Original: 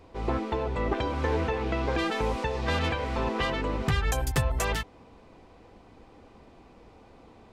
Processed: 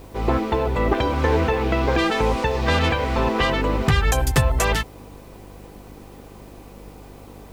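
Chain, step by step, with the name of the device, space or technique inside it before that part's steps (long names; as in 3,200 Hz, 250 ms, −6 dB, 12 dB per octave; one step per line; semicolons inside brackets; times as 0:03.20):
video cassette with head-switching buzz (hum with harmonics 50 Hz, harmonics 11, −52 dBFS; white noise bed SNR 35 dB)
level +8 dB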